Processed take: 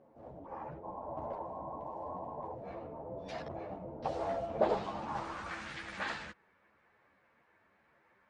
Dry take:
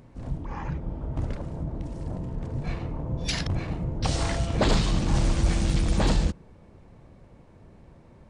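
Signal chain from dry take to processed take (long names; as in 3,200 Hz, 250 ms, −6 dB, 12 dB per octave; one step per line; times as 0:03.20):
band-pass filter sweep 640 Hz → 1,700 Hz, 0:04.68–0:05.72
sound drawn into the spectrogram noise, 0:00.83–0:02.55, 550–1,100 Hz −45 dBFS
string-ensemble chorus
level +4 dB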